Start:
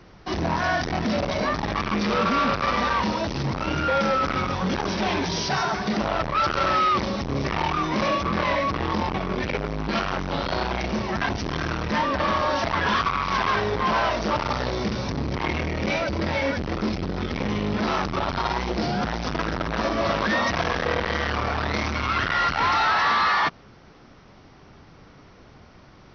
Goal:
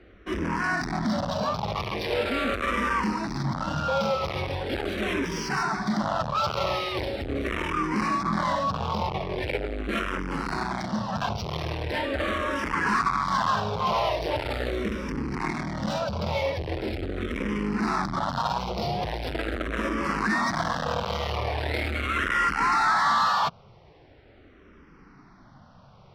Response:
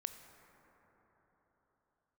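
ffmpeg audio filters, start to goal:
-filter_complex "[0:a]adynamicsmooth=sensitivity=6.5:basefreq=4300,asplit=2[link_01][link_02];[link_02]afreqshift=-0.41[link_03];[link_01][link_03]amix=inputs=2:normalize=1"

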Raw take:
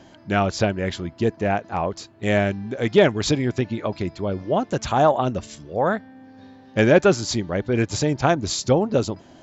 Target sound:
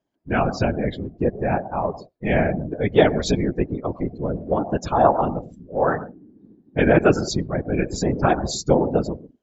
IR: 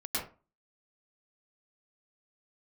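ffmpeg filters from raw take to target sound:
-filter_complex "[0:a]asplit=2[link_01][link_02];[1:a]atrim=start_sample=2205,lowpass=2600[link_03];[link_02][link_03]afir=irnorm=-1:irlink=0,volume=-17dB[link_04];[link_01][link_04]amix=inputs=2:normalize=0,afftdn=noise_reduction=33:noise_floor=-29,afftfilt=real='hypot(re,im)*cos(2*PI*random(0))':imag='hypot(re,im)*sin(2*PI*random(1))':win_size=512:overlap=0.75,volume=5.5dB"

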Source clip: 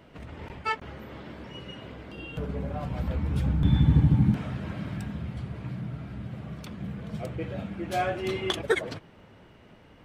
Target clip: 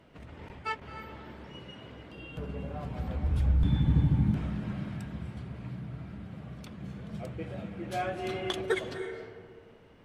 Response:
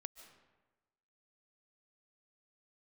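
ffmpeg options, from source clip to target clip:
-filter_complex "[0:a]asplit=3[link_01][link_02][link_03];[link_01]afade=type=out:start_time=3.23:duration=0.02[link_04];[link_02]asubboost=boost=6.5:cutoff=68,afade=type=in:start_time=3.23:duration=0.02,afade=type=out:start_time=3.63:duration=0.02[link_05];[link_03]afade=type=in:start_time=3.63:duration=0.02[link_06];[link_04][link_05][link_06]amix=inputs=3:normalize=0[link_07];[1:a]atrim=start_sample=2205,asetrate=25578,aresample=44100[link_08];[link_07][link_08]afir=irnorm=-1:irlink=0,volume=-2.5dB"

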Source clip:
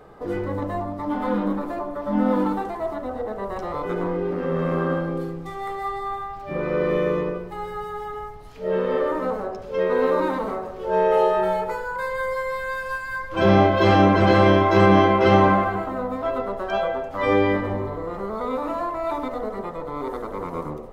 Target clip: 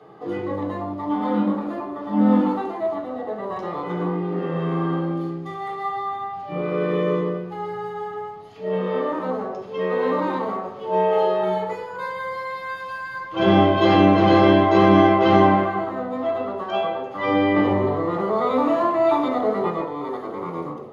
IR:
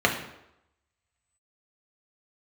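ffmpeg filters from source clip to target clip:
-filter_complex "[0:a]asettb=1/sr,asplit=3[link_01][link_02][link_03];[link_01]atrim=end=17.564[link_04];[link_02]atrim=start=17.56:end=19.85,asetpts=PTS-STARTPTS,afade=type=in:duration=0.004:curve=qsin,afade=type=out:start_time=2.286:duration=0.004:curve=qsin,acontrast=66[link_05];[link_03]atrim=start=19.846[link_06];[link_04][link_05]acrossfade=duration=0.004:curve1=hsin:curve2=qsin[link_07];[link_07][link_06]acrossfade=duration=0.004:curve1=qsin:curve2=hsin[link_08];[1:a]atrim=start_sample=2205,asetrate=70560,aresample=44100[link_09];[link_08][link_09]afir=irnorm=-1:irlink=0,volume=-12dB"

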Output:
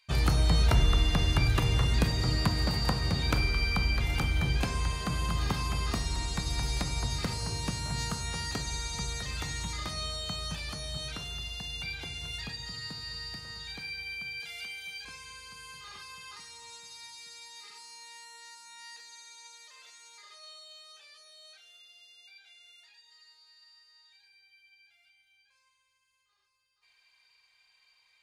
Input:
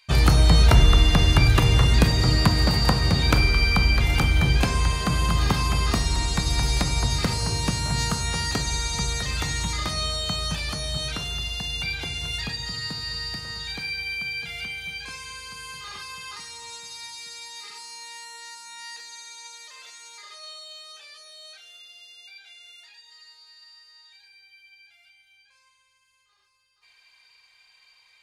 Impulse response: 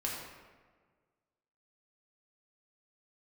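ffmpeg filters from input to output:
-filter_complex "[0:a]asettb=1/sr,asplit=3[link_01][link_02][link_03];[link_01]atrim=end=14.404[link_04];[link_02]atrim=start=14.4:end=15.05,asetpts=PTS-STARTPTS,afade=type=in:duration=0.004:curve=qsin,afade=type=out:start_time=0.646:duration=0.004:curve=qsin,bass=frequency=250:gain=-12,treble=frequency=4000:gain=6[link_05];[link_03]atrim=start=15.046[link_06];[link_04][link_05]acrossfade=duration=0.004:curve1=hsin:curve2=qsin[link_07];[link_07][link_06]acrossfade=duration=0.004:curve1=qsin:curve2=hsin,volume=-8.5dB"

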